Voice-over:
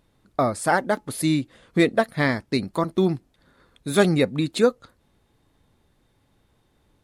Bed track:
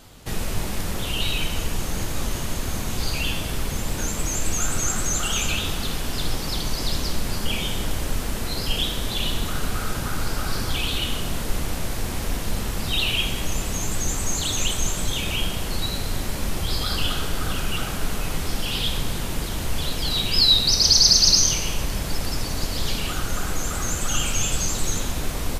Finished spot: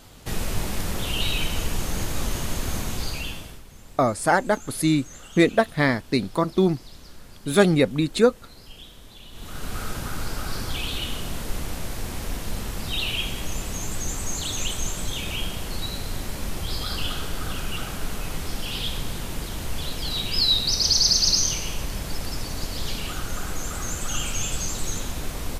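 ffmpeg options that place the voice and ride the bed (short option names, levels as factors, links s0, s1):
-filter_complex "[0:a]adelay=3600,volume=1.12[s0];[1:a]volume=5.96,afade=t=out:st=2.77:d=0.85:silence=0.105925,afade=t=in:st=9.31:d=0.49:silence=0.158489[s1];[s0][s1]amix=inputs=2:normalize=0"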